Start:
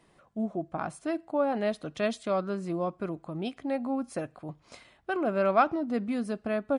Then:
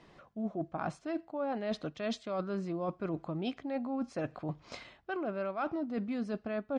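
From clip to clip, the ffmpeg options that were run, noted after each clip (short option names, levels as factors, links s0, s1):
-af "lowpass=f=6200:w=0.5412,lowpass=f=6200:w=1.3066,areverse,acompressor=threshold=0.0158:ratio=16,areverse,volume=1.68"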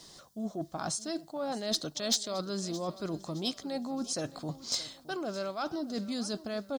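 -af "aexciter=amount=13.2:drive=6:freq=3800,asoftclip=type=tanh:threshold=0.106,aecho=1:1:618|1236|1854:0.133|0.056|0.0235"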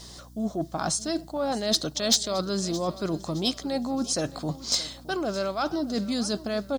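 -af "aeval=exprs='val(0)+0.00178*(sin(2*PI*60*n/s)+sin(2*PI*2*60*n/s)/2+sin(2*PI*3*60*n/s)/3+sin(2*PI*4*60*n/s)/4+sin(2*PI*5*60*n/s)/5)':c=same,volume=2.24"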